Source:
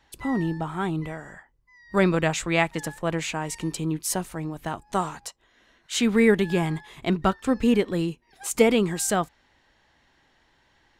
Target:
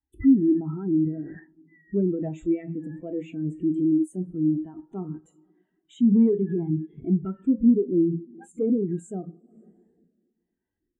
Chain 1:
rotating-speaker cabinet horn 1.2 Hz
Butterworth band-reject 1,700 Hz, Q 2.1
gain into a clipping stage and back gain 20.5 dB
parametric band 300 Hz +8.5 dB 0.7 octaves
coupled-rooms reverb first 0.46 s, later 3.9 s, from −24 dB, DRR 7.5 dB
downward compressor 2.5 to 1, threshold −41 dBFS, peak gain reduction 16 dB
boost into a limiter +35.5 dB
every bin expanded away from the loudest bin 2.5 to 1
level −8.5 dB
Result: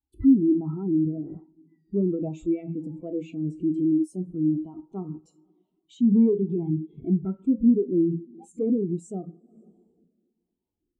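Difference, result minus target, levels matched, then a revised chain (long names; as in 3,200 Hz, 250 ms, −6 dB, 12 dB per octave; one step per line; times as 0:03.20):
2,000 Hz band −9.0 dB
rotating-speaker cabinet horn 1.2 Hz
Butterworth band-reject 4,900 Hz, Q 2.1
gain into a clipping stage and back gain 20.5 dB
parametric band 300 Hz +8.5 dB 0.7 octaves
coupled-rooms reverb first 0.46 s, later 3.9 s, from −24 dB, DRR 7.5 dB
downward compressor 2.5 to 1, threshold −41 dBFS, peak gain reduction 16 dB
boost into a limiter +35.5 dB
every bin expanded away from the loudest bin 2.5 to 1
level −8.5 dB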